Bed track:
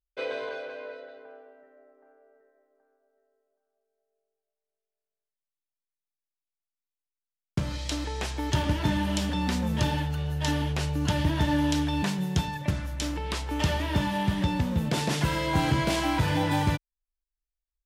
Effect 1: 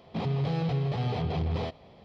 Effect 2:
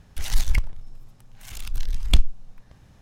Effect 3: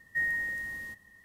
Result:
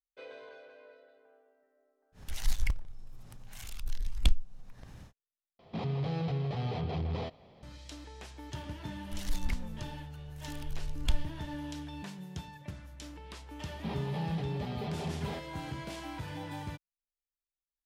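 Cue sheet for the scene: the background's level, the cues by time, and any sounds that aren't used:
bed track -15.5 dB
2.12 s: add 2 -8.5 dB, fades 0.10 s + upward compressor, threshold -28 dBFS
5.59 s: replace with 1 -4.5 dB
8.95 s: add 2 -12.5 dB
13.69 s: add 1 -7.5 dB + comb 5 ms
not used: 3

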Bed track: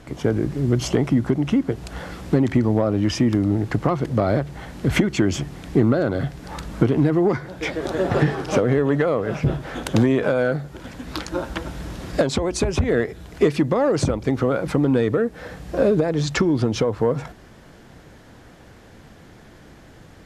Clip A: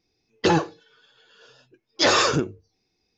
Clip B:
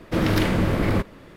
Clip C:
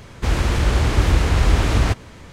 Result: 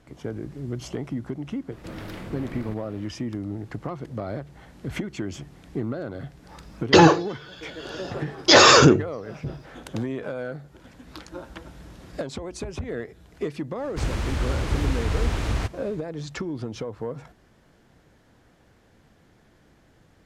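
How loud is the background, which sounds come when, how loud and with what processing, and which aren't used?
bed track -12 dB
1.72 s: add B -17.5 dB + level flattener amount 50%
6.49 s: add A -3 dB + loudness maximiser +16 dB
13.74 s: add C -8.5 dB, fades 0.10 s

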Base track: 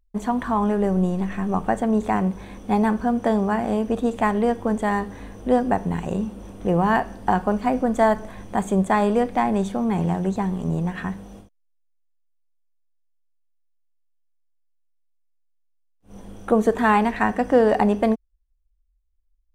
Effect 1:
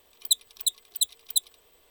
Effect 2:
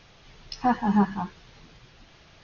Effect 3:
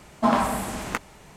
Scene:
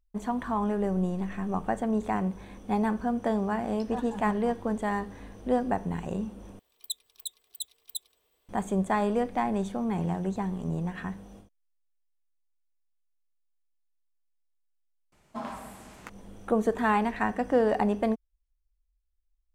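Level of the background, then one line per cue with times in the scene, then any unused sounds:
base track -7 dB
3.28 s: add 2 -14.5 dB
6.59 s: replace with 1 -12 dB
15.12 s: add 3 -16.5 dB

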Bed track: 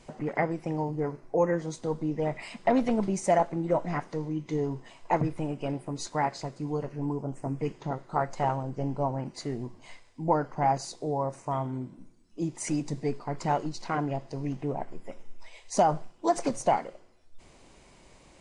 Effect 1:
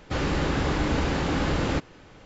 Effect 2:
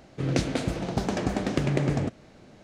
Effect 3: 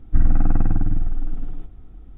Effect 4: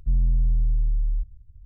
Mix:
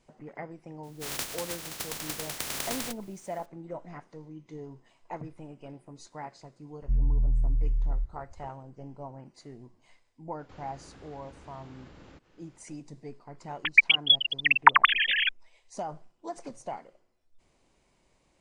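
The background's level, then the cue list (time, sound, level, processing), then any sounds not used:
bed track -13 dB
0.83 s: add 2 -9.5 dB + spectral contrast reduction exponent 0.11
6.82 s: add 4 -4 dB
10.39 s: add 1 -14.5 dB + compression 3:1, threshold -38 dBFS
13.64 s: add 4 -2 dB + formants replaced by sine waves
not used: 3

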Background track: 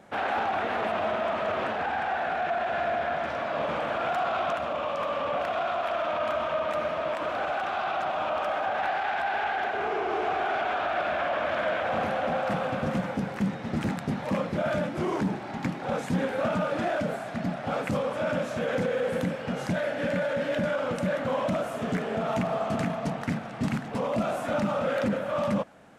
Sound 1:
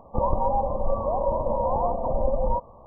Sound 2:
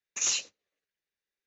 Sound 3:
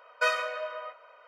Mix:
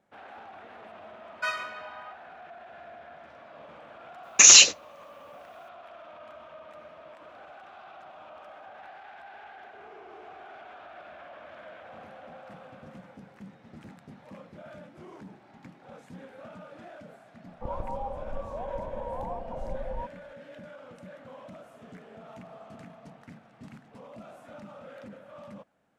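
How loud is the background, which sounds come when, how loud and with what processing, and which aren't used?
background track -19 dB
1.21 s: add 3 -3.5 dB + elliptic high-pass 680 Hz
4.23 s: add 2 -1.5 dB + loudness maximiser +24 dB
17.47 s: add 1 -11.5 dB

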